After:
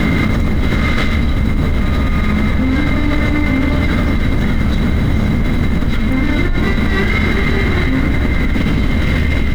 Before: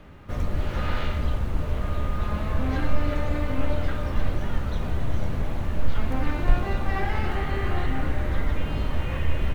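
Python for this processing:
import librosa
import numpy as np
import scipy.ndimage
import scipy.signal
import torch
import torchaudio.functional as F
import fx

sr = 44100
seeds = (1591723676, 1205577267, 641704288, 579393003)

y = fx.lower_of_two(x, sr, delay_ms=0.59)
y = fx.peak_eq(y, sr, hz=230.0, db=9.5, octaves=1.0)
y = fx.small_body(y, sr, hz=(2100.0, 3900.0), ring_ms=50, db=17)
y = fx.env_flatten(y, sr, amount_pct=100)
y = y * 10.0 ** (-2.0 / 20.0)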